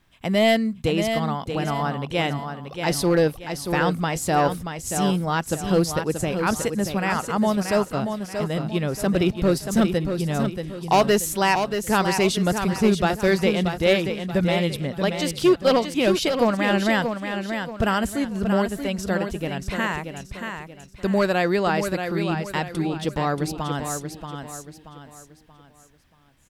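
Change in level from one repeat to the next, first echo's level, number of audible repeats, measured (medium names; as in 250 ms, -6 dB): -8.5 dB, -7.0 dB, 4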